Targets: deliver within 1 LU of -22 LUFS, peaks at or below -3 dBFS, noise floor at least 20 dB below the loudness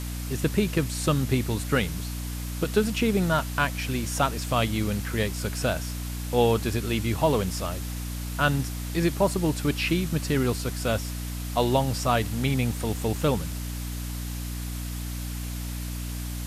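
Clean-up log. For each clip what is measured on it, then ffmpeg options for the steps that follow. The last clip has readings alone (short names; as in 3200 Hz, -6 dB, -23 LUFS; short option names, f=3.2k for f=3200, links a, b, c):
hum 60 Hz; harmonics up to 300 Hz; hum level -30 dBFS; noise floor -33 dBFS; noise floor target -47 dBFS; loudness -27.0 LUFS; peak -8.5 dBFS; loudness target -22.0 LUFS
-> -af "bandreject=f=60:t=h:w=6,bandreject=f=120:t=h:w=6,bandreject=f=180:t=h:w=6,bandreject=f=240:t=h:w=6,bandreject=f=300:t=h:w=6"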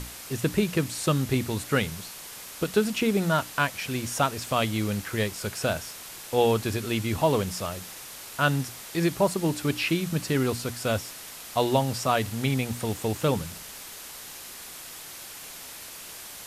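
hum none; noise floor -42 dBFS; noise floor target -47 dBFS
-> -af "afftdn=nr=6:nf=-42"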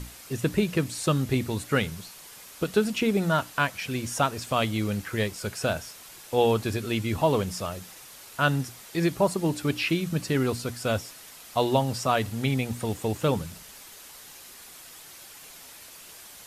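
noise floor -47 dBFS; loudness -27.0 LUFS; peak -8.5 dBFS; loudness target -22.0 LUFS
-> -af "volume=5dB"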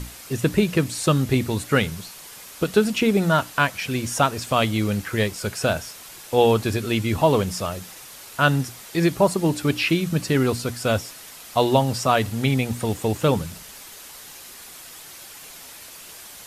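loudness -22.0 LUFS; peak -3.5 dBFS; noise floor -42 dBFS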